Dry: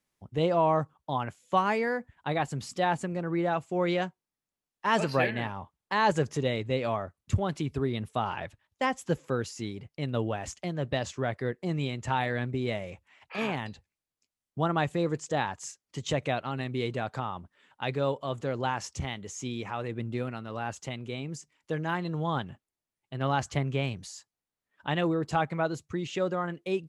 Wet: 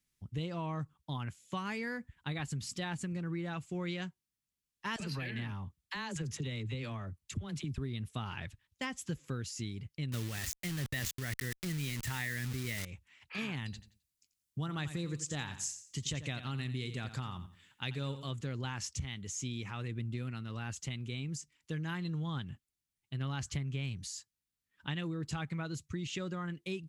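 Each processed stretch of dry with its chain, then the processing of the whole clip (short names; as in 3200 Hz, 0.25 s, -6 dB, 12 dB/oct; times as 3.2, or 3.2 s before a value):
4.96–7.78 compressor 4:1, threshold -28 dBFS + dispersion lows, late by 41 ms, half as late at 590 Hz
10.12–12.85 bell 1900 Hz +12 dB 0.38 oct + requantised 6-bit, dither none + sustainer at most 25 dB/s
13.64–18.31 high shelf 4800 Hz +6.5 dB + feedback echo 87 ms, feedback 28%, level -13 dB
whole clip: passive tone stack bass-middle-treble 6-0-2; compressor, threshold -50 dBFS; gain +16 dB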